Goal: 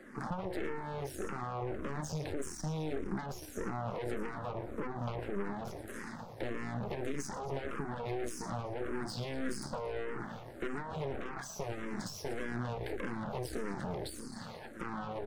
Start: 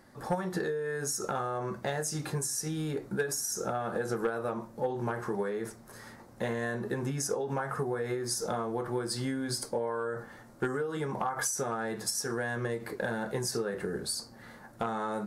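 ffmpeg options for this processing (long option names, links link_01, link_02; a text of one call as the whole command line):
ffmpeg -i in.wav -filter_complex "[0:a]highpass=frequency=120:width=0.5412,highpass=frequency=120:width=1.3066,asplit=6[link_01][link_02][link_03][link_04][link_05][link_06];[link_02]adelay=115,afreqshift=-62,volume=-15.5dB[link_07];[link_03]adelay=230,afreqshift=-124,volume=-21.2dB[link_08];[link_04]adelay=345,afreqshift=-186,volume=-26.9dB[link_09];[link_05]adelay=460,afreqshift=-248,volume=-32.5dB[link_10];[link_06]adelay=575,afreqshift=-310,volume=-38.2dB[link_11];[link_01][link_07][link_08][link_09][link_10][link_11]amix=inputs=6:normalize=0,asoftclip=type=tanh:threshold=-34.5dB,asetnsamples=nb_out_samples=441:pad=0,asendcmd='2.24 lowpass f 1500;3.88 lowpass f 3900',lowpass=frequency=2600:poles=1,alimiter=level_in=13dB:limit=-24dB:level=0:latency=1,volume=-13dB,acrossover=split=190|510[link_12][link_13][link_14];[link_12]acompressor=threshold=-48dB:ratio=4[link_15];[link_13]acompressor=threshold=-49dB:ratio=4[link_16];[link_14]acompressor=threshold=-53dB:ratio=4[link_17];[link_15][link_16][link_17]amix=inputs=3:normalize=0,aeval=exprs='0.0211*(cos(1*acos(clip(val(0)/0.0211,-1,1)))-cos(1*PI/2))+0.00841*(cos(4*acos(clip(val(0)/0.0211,-1,1)))-cos(4*PI/2))':channel_layout=same,asplit=2[link_18][link_19];[link_19]afreqshift=-1.7[link_20];[link_18][link_20]amix=inputs=2:normalize=1,volume=8.5dB" out.wav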